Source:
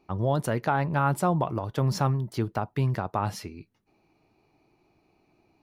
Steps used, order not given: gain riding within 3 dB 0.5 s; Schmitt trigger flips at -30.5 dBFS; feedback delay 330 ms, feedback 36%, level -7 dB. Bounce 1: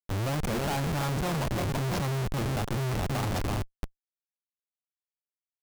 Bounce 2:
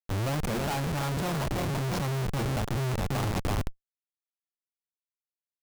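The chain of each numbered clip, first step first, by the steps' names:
gain riding > feedback delay > Schmitt trigger; feedback delay > Schmitt trigger > gain riding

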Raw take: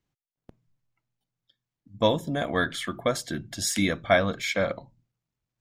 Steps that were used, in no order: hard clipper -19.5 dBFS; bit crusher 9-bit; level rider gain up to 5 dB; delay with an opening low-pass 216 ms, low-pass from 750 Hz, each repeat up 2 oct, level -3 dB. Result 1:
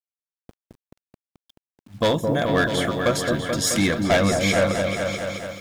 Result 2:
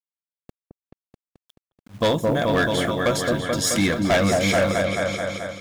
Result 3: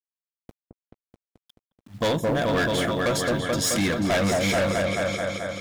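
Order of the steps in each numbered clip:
hard clipper > delay with an opening low-pass > level rider > bit crusher; bit crusher > delay with an opening low-pass > hard clipper > level rider; level rider > bit crusher > delay with an opening low-pass > hard clipper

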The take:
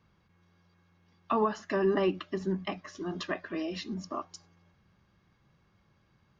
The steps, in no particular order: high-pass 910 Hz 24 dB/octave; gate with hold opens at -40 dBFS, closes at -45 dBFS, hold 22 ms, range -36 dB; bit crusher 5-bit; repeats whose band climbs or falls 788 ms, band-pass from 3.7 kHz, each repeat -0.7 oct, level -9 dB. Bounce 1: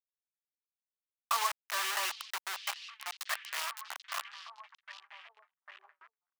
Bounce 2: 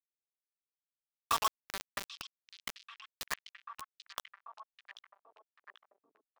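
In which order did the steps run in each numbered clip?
bit crusher > repeats whose band climbs or falls > gate with hold > high-pass; high-pass > bit crusher > gate with hold > repeats whose band climbs or falls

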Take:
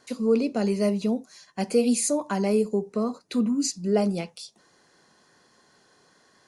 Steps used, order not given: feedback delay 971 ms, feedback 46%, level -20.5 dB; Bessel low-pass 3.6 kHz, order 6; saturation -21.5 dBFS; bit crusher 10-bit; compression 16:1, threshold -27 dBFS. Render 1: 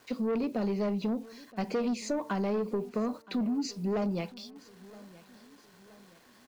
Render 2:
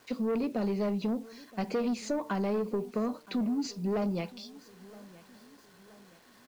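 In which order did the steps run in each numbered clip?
Bessel low-pass > bit crusher > saturation > compression > feedback delay; saturation > Bessel low-pass > compression > feedback delay > bit crusher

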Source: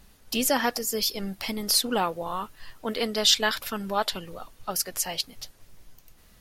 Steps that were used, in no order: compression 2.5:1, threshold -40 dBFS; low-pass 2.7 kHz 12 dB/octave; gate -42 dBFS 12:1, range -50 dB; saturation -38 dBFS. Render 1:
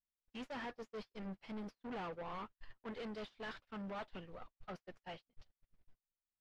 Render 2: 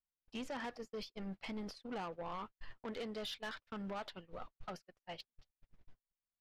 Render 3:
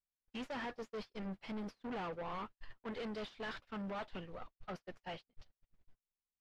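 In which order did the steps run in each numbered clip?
saturation > compression > low-pass > gate; compression > low-pass > gate > saturation; saturation > low-pass > gate > compression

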